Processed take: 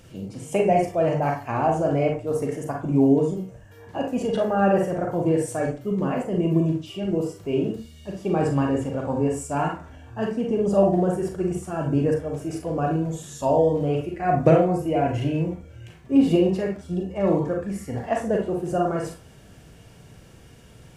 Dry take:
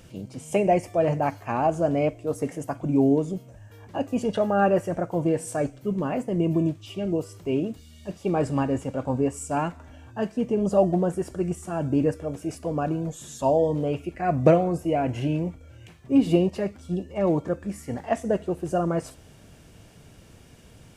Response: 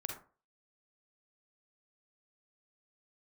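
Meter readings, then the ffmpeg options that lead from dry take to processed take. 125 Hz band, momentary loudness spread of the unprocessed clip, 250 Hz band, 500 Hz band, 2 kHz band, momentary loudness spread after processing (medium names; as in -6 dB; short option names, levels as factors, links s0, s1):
+2.5 dB, 11 LU, +2.0 dB, +2.0 dB, +2.0 dB, 11 LU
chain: -filter_complex "[1:a]atrim=start_sample=2205,asetrate=52920,aresample=44100[s0];[0:a][s0]afir=irnorm=-1:irlink=0,volume=1.58"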